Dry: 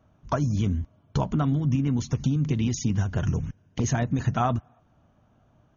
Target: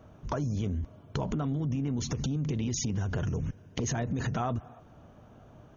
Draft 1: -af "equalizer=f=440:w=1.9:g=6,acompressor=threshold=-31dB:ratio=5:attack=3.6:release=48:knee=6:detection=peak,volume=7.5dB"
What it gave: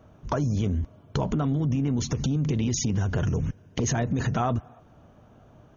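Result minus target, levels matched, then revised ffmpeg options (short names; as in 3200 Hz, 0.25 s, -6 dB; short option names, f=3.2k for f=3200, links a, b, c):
compressor: peak gain reduction -5.5 dB
-af "equalizer=f=440:w=1.9:g=6,acompressor=threshold=-38dB:ratio=5:attack=3.6:release=48:knee=6:detection=peak,volume=7.5dB"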